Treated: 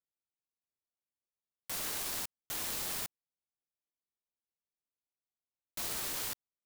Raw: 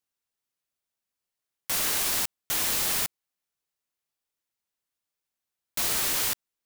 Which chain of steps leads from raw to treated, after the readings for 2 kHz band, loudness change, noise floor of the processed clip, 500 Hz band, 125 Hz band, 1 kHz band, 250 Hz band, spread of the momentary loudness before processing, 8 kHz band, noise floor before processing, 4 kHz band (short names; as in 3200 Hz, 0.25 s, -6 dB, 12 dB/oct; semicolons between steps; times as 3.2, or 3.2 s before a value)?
-11.0 dB, -11.0 dB, under -85 dBFS, -9.0 dB, -8.5 dB, -9.5 dB, -8.5 dB, 7 LU, -11.0 dB, under -85 dBFS, -11.0 dB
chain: Wiener smoothing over 25 samples; gain -8.5 dB